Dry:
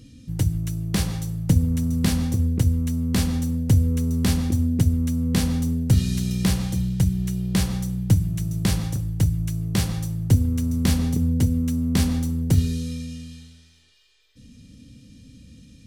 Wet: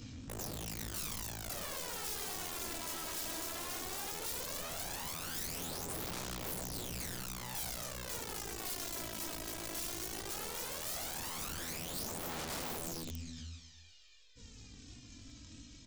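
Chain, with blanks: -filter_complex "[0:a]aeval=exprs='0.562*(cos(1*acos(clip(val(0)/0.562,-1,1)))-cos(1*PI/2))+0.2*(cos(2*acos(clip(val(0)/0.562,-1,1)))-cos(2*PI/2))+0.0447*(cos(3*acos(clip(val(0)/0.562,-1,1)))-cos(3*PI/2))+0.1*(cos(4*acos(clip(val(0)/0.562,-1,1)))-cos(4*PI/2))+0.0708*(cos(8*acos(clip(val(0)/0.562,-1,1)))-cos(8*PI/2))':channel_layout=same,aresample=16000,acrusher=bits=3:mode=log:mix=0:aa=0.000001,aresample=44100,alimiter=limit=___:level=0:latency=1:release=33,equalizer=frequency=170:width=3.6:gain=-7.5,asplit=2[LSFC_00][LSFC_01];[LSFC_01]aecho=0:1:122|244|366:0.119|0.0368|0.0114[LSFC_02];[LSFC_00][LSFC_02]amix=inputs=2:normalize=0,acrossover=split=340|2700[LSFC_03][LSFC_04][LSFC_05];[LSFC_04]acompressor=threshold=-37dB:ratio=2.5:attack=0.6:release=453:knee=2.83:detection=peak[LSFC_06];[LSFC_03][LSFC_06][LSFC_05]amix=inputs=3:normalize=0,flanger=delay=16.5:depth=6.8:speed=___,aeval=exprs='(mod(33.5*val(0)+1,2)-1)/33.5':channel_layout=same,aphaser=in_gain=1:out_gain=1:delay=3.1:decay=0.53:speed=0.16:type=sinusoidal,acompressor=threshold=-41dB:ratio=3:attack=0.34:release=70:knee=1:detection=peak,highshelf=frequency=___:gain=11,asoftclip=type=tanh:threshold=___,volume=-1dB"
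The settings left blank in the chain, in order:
-15dB, 3, 5100, -30.5dB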